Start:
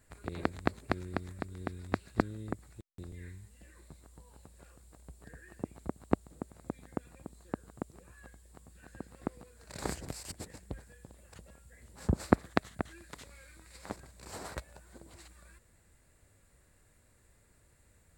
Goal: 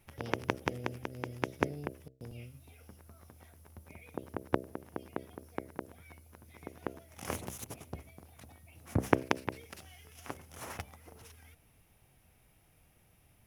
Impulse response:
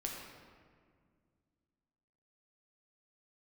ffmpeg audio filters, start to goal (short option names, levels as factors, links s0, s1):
-af "bandreject=f=47.97:t=h:w=4,bandreject=f=95.94:t=h:w=4,bandreject=f=143.91:t=h:w=4,bandreject=f=191.88:t=h:w=4,bandreject=f=239.85:t=h:w=4,bandreject=f=287.82:t=h:w=4,bandreject=f=335.79:t=h:w=4,bandreject=f=383.76:t=h:w=4,bandreject=f=431.73:t=h:w=4,bandreject=f=479.7:t=h:w=4,asetrate=59535,aresample=44100"